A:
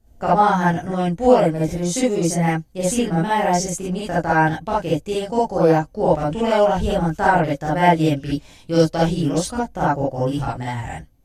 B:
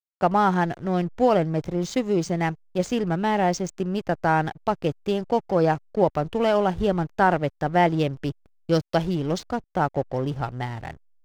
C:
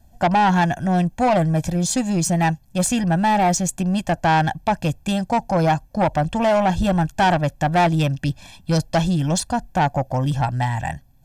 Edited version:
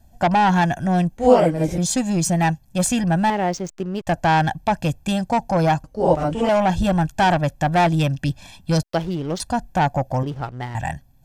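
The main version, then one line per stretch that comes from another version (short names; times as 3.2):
C
1.17–1.78 from A
3.3–4.07 from B
5.84–6.49 from A
8.83–9.4 from B
10.23–10.75 from B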